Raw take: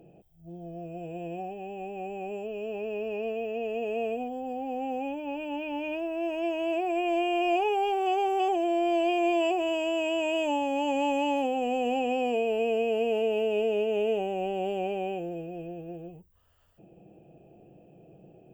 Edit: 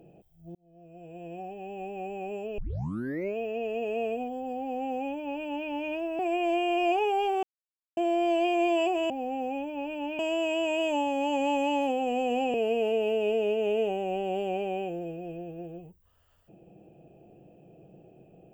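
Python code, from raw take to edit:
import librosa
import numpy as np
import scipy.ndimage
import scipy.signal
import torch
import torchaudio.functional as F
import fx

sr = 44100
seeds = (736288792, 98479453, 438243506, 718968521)

y = fx.edit(x, sr, fx.fade_in_span(start_s=0.55, length_s=1.25),
    fx.tape_start(start_s=2.58, length_s=0.78),
    fx.duplicate(start_s=4.6, length_s=1.09, to_s=9.74),
    fx.cut(start_s=6.19, length_s=0.64),
    fx.silence(start_s=8.07, length_s=0.54),
    fx.cut(start_s=12.09, length_s=0.75), tone=tone)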